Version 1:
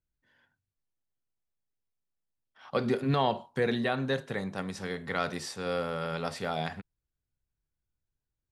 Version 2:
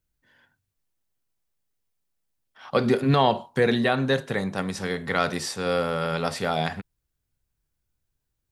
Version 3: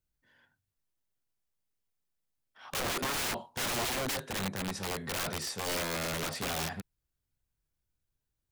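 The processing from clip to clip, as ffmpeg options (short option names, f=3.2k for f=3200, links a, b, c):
-af "highshelf=f=8.5k:g=4,volume=7dB"
-af "aeval=exprs='(mod(13.3*val(0)+1,2)-1)/13.3':c=same,volume=-5.5dB"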